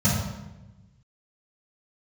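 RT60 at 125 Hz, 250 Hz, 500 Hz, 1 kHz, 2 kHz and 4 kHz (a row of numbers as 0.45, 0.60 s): 1.7, 1.5, 1.1, 0.95, 0.90, 0.75 s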